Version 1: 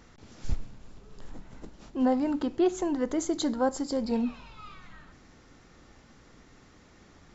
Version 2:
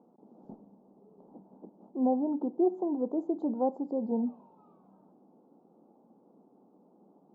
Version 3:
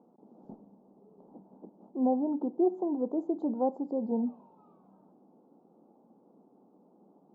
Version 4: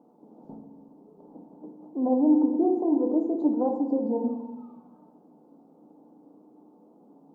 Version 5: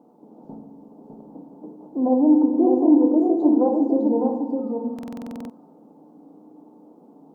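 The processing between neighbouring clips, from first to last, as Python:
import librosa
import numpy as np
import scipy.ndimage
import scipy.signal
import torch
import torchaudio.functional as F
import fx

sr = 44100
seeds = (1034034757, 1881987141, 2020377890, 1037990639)

y1 = scipy.signal.sosfilt(scipy.signal.ellip(3, 1.0, 40, [190.0, 860.0], 'bandpass', fs=sr, output='sos'), x)
y1 = y1 * librosa.db_to_amplitude(-1.5)
y2 = y1
y3 = y2 + 10.0 ** (-17.0 / 20.0) * np.pad(y2, (int(289 * sr / 1000.0), 0))[:len(y2)]
y3 = fx.rev_fdn(y3, sr, rt60_s=0.86, lf_ratio=1.35, hf_ratio=0.8, size_ms=20.0, drr_db=2.5)
y3 = y3 * librosa.db_to_amplitude(2.5)
y4 = y3 + 10.0 ** (-4.5 / 20.0) * np.pad(y3, (int(605 * sr / 1000.0), 0))[:len(y3)]
y4 = fx.buffer_glitch(y4, sr, at_s=(4.94,), block=2048, repeats=11)
y4 = y4 * librosa.db_to_amplitude(4.5)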